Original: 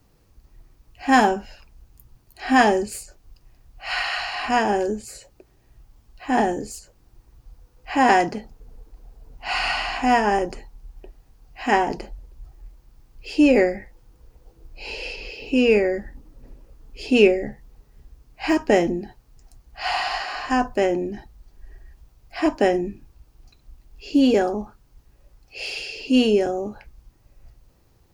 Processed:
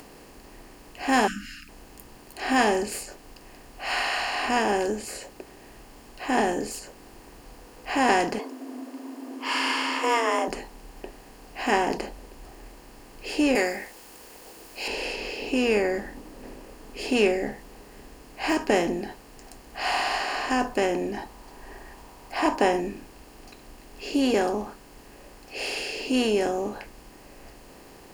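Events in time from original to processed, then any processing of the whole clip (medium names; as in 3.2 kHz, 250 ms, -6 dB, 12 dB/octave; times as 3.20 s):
1.27–1.69 s: spectral selection erased 310–1200 Hz
8.39–10.48 s: frequency shift +230 Hz
13.55–14.88 s: tilt EQ +4 dB/octave
21.14–22.80 s: peaking EQ 940 Hz +12 dB 0.55 oct
whole clip: spectral levelling over time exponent 0.6; treble shelf 5.4 kHz +8.5 dB; upward compressor, threshold -37 dBFS; trim -8.5 dB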